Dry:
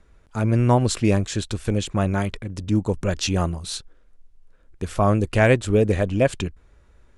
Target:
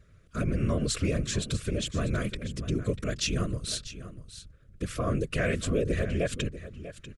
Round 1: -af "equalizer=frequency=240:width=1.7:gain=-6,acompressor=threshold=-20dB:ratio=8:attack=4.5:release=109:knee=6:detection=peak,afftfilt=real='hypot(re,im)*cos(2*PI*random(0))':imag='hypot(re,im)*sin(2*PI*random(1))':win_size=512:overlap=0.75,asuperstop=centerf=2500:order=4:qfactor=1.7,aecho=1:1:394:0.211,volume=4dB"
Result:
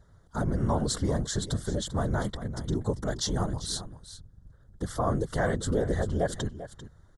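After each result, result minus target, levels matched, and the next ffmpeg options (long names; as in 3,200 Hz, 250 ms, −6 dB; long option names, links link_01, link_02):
echo 249 ms early; 1,000 Hz band +7.0 dB
-af "equalizer=frequency=240:width=1.7:gain=-6,acompressor=threshold=-20dB:ratio=8:attack=4.5:release=109:knee=6:detection=peak,afftfilt=real='hypot(re,im)*cos(2*PI*random(0))':imag='hypot(re,im)*sin(2*PI*random(1))':win_size=512:overlap=0.75,asuperstop=centerf=2500:order=4:qfactor=1.7,aecho=1:1:643:0.211,volume=4dB"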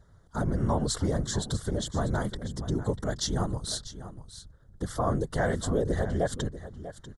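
1,000 Hz band +7.0 dB
-af "equalizer=frequency=240:width=1.7:gain=-6,acompressor=threshold=-20dB:ratio=8:attack=4.5:release=109:knee=6:detection=peak,afftfilt=real='hypot(re,im)*cos(2*PI*random(0))':imag='hypot(re,im)*sin(2*PI*random(1))':win_size=512:overlap=0.75,asuperstop=centerf=850:order=4:qfactor=1.7,aecho=1:1:643:0.211,volume=4dB"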